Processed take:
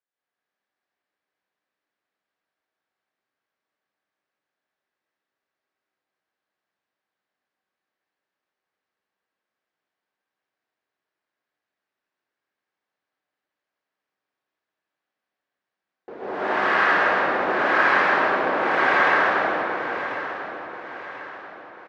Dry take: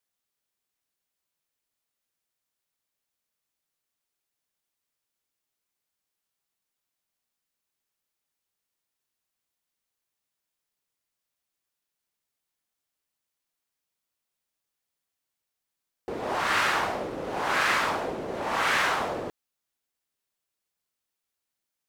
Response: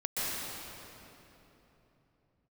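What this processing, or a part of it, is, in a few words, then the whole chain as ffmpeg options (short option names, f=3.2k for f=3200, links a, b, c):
station announcement: -filter_complex "[0:a]highpass=420,lowpass=5k,aemphasis=mode=reproduction:type=riaa,equalizer=f=1.6k:t=o:w=0.45:g=5.5,aecho=1:1:160.3|224.5:0.562|0.282[a];[1:a]atrim=start_sample=2205[b];[a][b]afir=irnorm=-1:irlink=0,aecho=1:1:1039|2078|3117|4156:0.251|0.111|0.0486|0.0214,volume=-3dB"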